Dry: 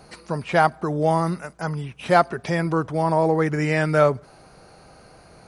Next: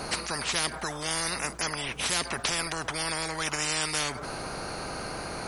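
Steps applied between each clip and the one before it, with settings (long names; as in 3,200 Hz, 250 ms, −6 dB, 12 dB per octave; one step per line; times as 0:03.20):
every bin compressed towards the loudest bin 10 to 1
level −8 dB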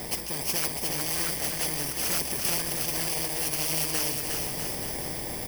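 samples in bit-reversed order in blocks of 32 samples
bouncing-ball delay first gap 360 ms, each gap 0.8×, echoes 5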